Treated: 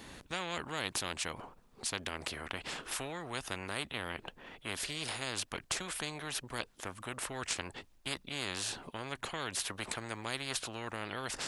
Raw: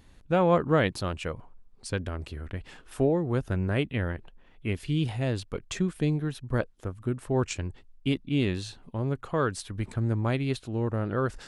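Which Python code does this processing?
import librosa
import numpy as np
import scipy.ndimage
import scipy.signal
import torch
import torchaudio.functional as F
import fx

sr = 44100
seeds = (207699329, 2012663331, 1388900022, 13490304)

y = fx.highpass(x, sr, hz=260.0, slope=6)
y = fx.spectral_comp(y, sr, ratio=4.0)
y = y * librosa.db_to_amplitude(-4.5)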